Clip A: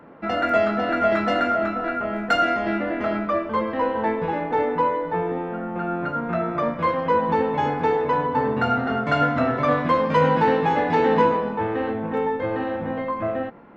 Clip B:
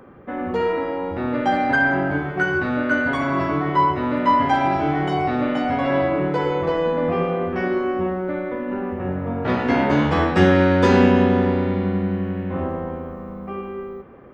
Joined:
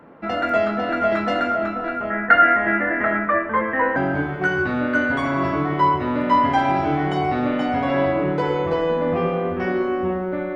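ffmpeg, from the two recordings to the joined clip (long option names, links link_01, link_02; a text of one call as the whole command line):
ffmpeg -i cue0.wav -i cue1.wav -filter_complex "[0:a]asettb=1/sr,asplit=3[link_01][link_02][link_03];[link_01]atrim=end=2.104[link_04];[link_02]atrim=start=2.1:end=3.96,asetpts=PTS-STARTPTS,afade=type=in:duration=0.004:curve=qsin,afade=type=out:start_time=1.856:duration=0.004:curve=qsin,lowpass=frequency=1800:width_type=q:width=6.2[link_05];[link_03]atrim=start=3.956[link_06];[link_04][link_05]acrossfade=duration=0.004:curve1=hsin:curve2=qsin[link_07];[link_07][link_06]acrossfade=duration=0.004:curve1=qsin:curve2=hsin,apad=whole_dur=10.55,atrim=end=10.55,atrim=end=3.962[link_08];[1:a]atrim=start=1.918:end=8.51[link_09];[link_08][link_09]acrossfade=duration=0.004:curve1=hsin:curve2=hsin" out.wav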